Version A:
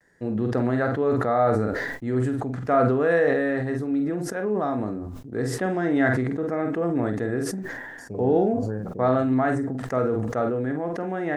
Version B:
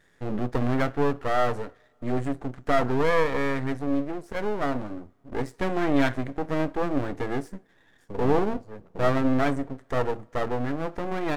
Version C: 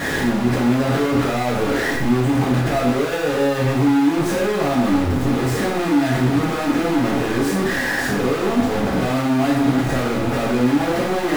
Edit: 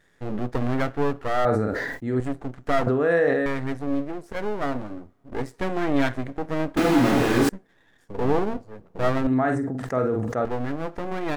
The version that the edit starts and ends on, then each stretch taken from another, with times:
B
0:01.45–0:02.20: punch in from A
0:02.87–0:03.46: punch in from A
0:06.77–0:07.49: punch in from C
0:09.27–0:10.45: punch in from A

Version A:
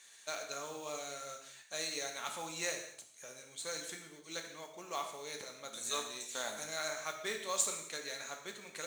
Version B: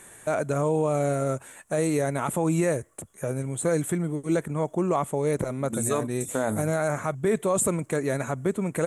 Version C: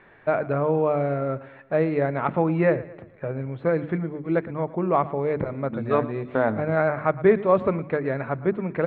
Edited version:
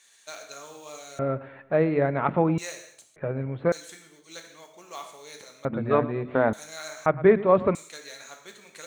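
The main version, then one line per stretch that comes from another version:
A
0:01.19–0:02.58: punch in from C
0:03.16–0:03.72: punch in from C
0:05.65–0:06.53: punch in from C
0:07.06–0:07.75: punch in from C
not used: B

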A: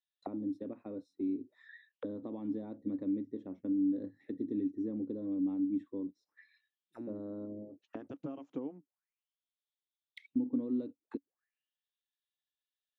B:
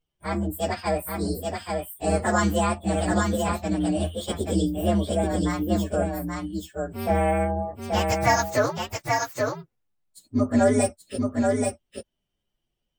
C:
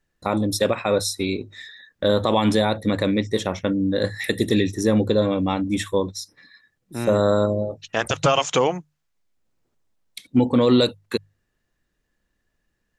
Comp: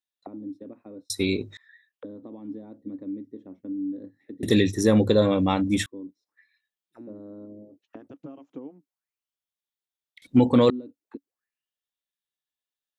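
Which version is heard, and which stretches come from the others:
A
0:01.10–0:01.57: punch in from C
0:04.43–0:05.86: punch in from C
0:10.22–0:10.70: punch in from C
not used: B

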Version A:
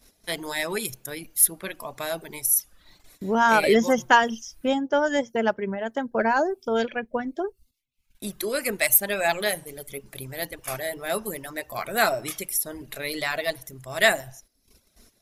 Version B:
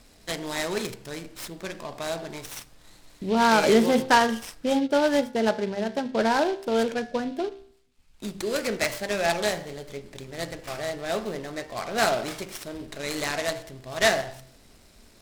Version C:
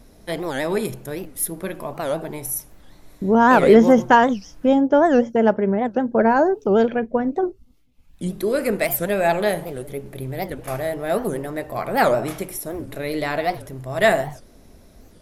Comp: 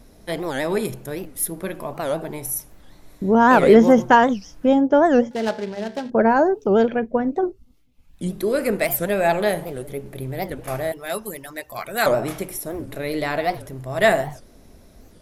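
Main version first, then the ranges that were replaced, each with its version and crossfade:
C
0:05.31–0:06.10: punch in from B
0:10.92–0:12.06: punch in from A

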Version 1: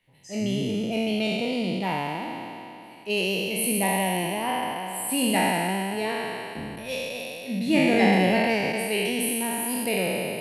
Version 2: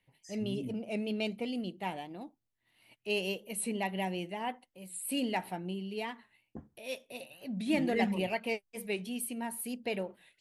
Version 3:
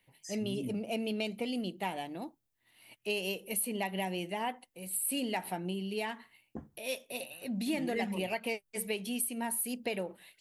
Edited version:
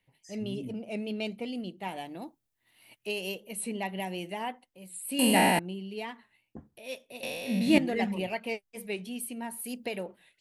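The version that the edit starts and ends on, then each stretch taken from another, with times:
2
0:01.88–0:03.35: punch in from 3
0:04.00–0:04.49: punch in from 3
0:05.19–0:05.59: punch in from 1
0:07.23–0:07.78: punch in from 1
0:09.64–0:10.06: punch in from 3

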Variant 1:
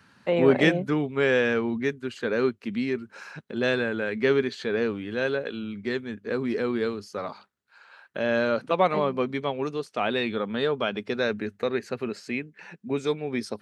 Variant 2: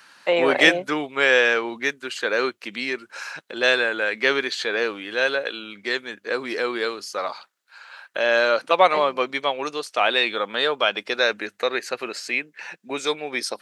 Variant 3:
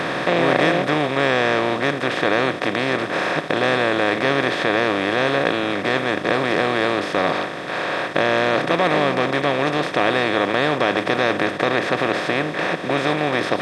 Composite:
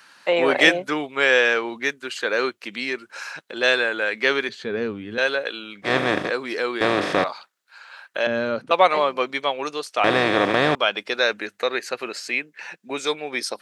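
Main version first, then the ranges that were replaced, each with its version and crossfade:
2
0:04.49–0:05.18: punch in from 1
0:05.87–0:06.27: punch in from 3, crossfade 0.10 s
0:06.81–0:07.24: punch in from 3
0:08.27–0:08.71: punch in from 1
0:10.04–0:10.75: punch in from 3

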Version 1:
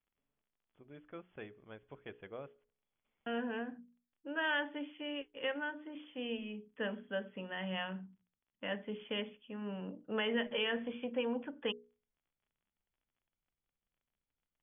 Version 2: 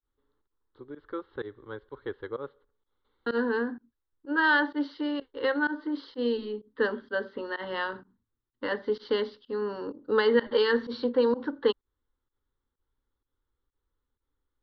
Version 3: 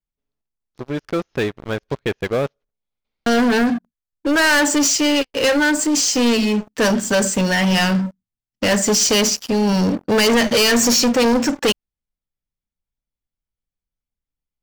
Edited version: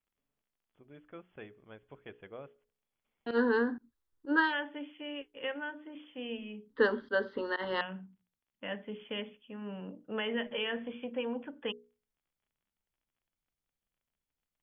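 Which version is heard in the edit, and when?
1
0:03.31–0:04.46: punch in from 2, crossfade 0.16 s
0:06.70–0:07.81: punch in from 2
not used: 3

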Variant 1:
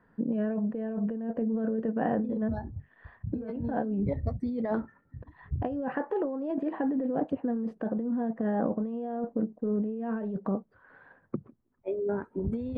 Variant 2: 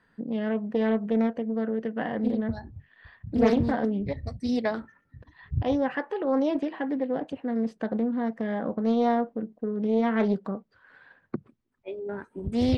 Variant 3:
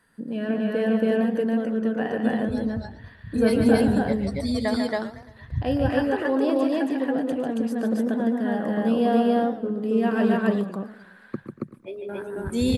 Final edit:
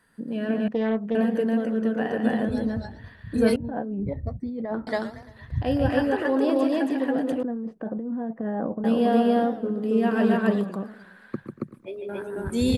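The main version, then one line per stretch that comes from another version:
3
0:00.68–0:01.15: punch in from 2
0:03.56–0:04.87: punch in from 1
0:07.43–0:08.84: punch in from 1

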